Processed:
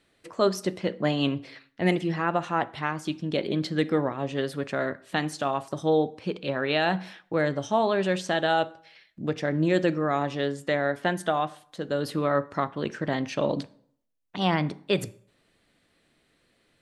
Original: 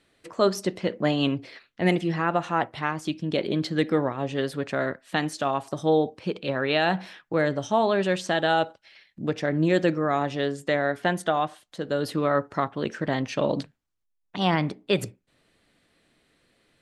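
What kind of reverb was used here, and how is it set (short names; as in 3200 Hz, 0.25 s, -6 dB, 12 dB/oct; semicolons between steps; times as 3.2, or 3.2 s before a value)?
plate-style reverb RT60 0.62 s, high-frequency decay 0.75×, DRR 17.5 dB; gain -1.5 dB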